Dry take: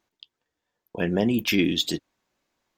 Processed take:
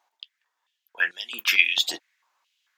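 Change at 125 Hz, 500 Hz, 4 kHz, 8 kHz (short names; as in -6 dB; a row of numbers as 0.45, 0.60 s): under -30 dB, -19.5 dB, +3.5 dB, +2.0 dB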